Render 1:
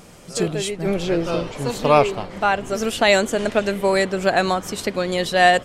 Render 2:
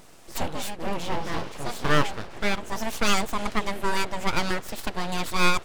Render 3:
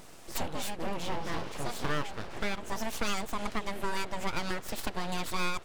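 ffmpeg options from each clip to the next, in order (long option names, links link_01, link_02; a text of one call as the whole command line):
ffmpeg -i in.wav -af "aeval=exprs='abs(val(0))':channel_layout=same,volume=-4dB" out.wav
ffmpeg -i in.wav -af "acompressor=threshold=-29dB:ratio=3" out.wav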